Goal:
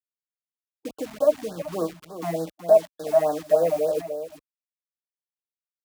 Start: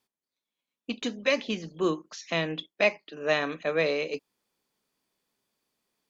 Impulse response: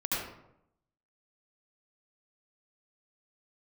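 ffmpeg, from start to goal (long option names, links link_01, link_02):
-filter_complex "[0:a]asplit=2[link_01][link_02];[link_02]acompressor=threshold=-40dB:ratio=6,volume=2dB[link_03];[link_01][link_03]amix=inputs=2:normalize=0,aecho=1:1:6.7:0.63,asoftclip=type=hard:threshold=-14.5dB,firequalizer=gain_entry='entry(360,0);entry(600,13);entry(1200,-3);entry(3500,-28);entry(8300,-1)':delay=0.05:min_phase=1,asetrate=45938,aresample=44100,acrusher=bits=5:mix=0:aa=0.000001,highpass=42,aecho=1:1:374:0.316,afftfilt=real='re*(1-between(b*sr/1024,400*pow(2600/400,0.5+0.5*sin(2*PI*3.4*pts/sr))/1.41,400*pow(2600/400,0.5+0.5*sin(2*PI*3.4*pts/sr))*1.41))':imag='im*(1-between(b*sr/1024,400*pow(2600/400,0.5+0.5*sin(2*PI*3.4*pts/sr))/1.41,400*pow(2600/400,0.5+0.5*sin(2*PI*3.4*pts/sr))*1.41))':win_size=1024:overlap=0.75,volume=-4.5dB"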